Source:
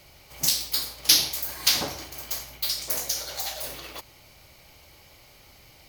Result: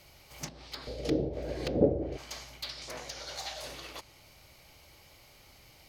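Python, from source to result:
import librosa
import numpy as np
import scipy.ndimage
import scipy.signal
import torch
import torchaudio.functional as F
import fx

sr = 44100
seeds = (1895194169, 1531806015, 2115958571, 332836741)

y = fx.low_shelf_res(x, sr, hz=720.0, db=12.5, q=3.0, at=(0.87, 2.17))
y = fx.env_lowpass_down(y, sr, base_hz=580.0, full_db=-18.5)
y = fx.slew_limit(y, sr, full_power_hz=210.0)
y = y * librosa.db_to_amplitude(-4.0)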